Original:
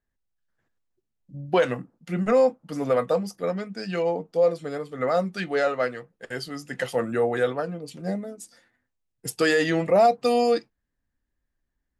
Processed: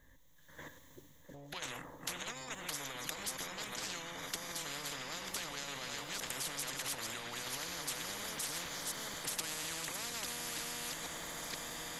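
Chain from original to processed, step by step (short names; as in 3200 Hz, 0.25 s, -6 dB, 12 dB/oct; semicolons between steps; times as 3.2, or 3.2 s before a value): reverse delay 0.481 s, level -12.5 dB; ripple EQ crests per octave 1.1, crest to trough 12 dB; AGC gain up to 11 dB; limiter -28 dBFS, peak gain reduction 27 dB; diffused feedback echo 1.239 s, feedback 64%, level -15 dB; spectral compressor 10:1; gain +5.5 dB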